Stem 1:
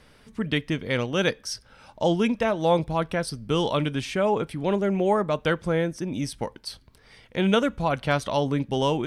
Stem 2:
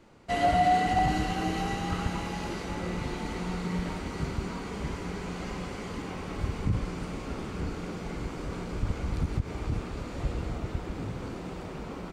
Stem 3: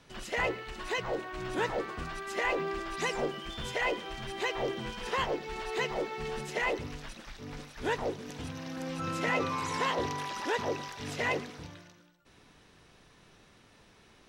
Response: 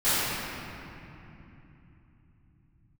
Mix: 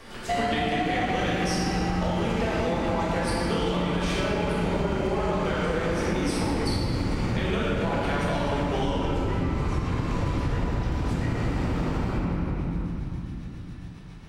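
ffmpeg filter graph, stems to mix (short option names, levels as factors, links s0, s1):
-filter_complex "[0:a]highpass=300,acompressor=threshold=0.0355:ratio=6,volume=1.26,asplit=2[s0][s1];[s1]volume=0.531[s2];[1:a]acompressor=threshold=0.0178:ratio=2.5,volume=1.26,asplit=2[s3][s4];[s4]volume=0.562[s5];[2:a]acompressor=threshold=0.0158:ratio=6,tremolo=f=7.3:d=0.91,volume=1.12,asplit=2[s6][s7];[s7]volume=0.376[s8];[3:a]atrim=start_sample=2205[s9];[s2][s5][s8]amix=inputs=3:normalize=0[s10];[s10][s9]afir=irnorm=-1:irlink=0[s11];[s0][s3][s6][s11]amix=inputs=4:normalize=0,acompressor=threshold=0.0794:ratio=10"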